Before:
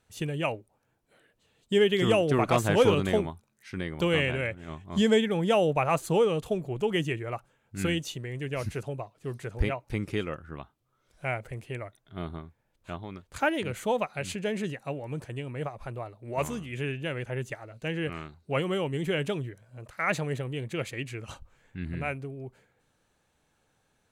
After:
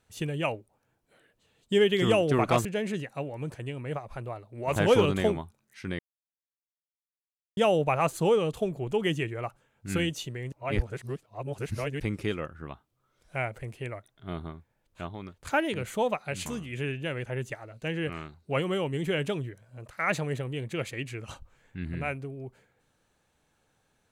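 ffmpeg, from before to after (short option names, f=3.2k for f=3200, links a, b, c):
-filter_complex "[0:a]asplit=8[a][b][c][d][e][f][g][h];[a]atrim=end=2.652[i];[b]atrim=start=14.348:end=16.462[j];[c]atrim=start=2.648:end=3.88,asetpts=PTS-STARTPTS,afade=t=out:st=1.228:d=0.004:c=hsin[k];[d]atrim=start=3.88:end=5.46,asetpts=PTS-STARTPTS,volume=0[l];[e]atrim=start=5.46:end=8.412,asetpts=PTS-STARTPTS,afade=t=in:d=0.004:c=hsin[m];[f]atrim=start=8.408:end=9.892,asetpts=PTS-STARTPTS,areverse[n];[g]atrim=start=9.888:end=14.352[o];[h]atrim=start=16.458[p];[i][j]acrossfade=d=0.004:c1=hsin:c2=hsin[q];[k][l][m]concat=n=3:v=0:a=1[r];[q][r]acrossfade=d=0.004:c1=hsin:c2=hsin[s];[s][n]acrossfade=d=0.004:c1=hsin:c2=hsin[t];[t][o]acrossfade=d=0.004:c1=hsin:c2=hsin[u];[u][p]acrossfade=d=0.004:c1=hsin:c2=hsin"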